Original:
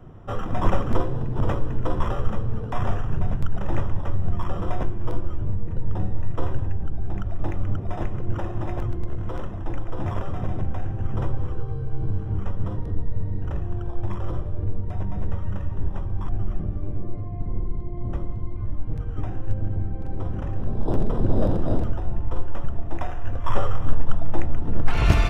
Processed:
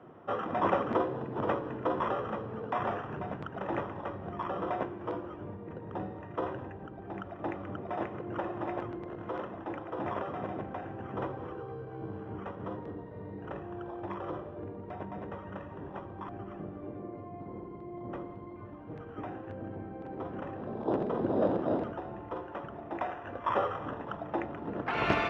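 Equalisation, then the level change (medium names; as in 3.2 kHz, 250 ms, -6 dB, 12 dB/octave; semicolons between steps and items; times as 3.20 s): band-pass 300–2600 Hz; 0.0 dB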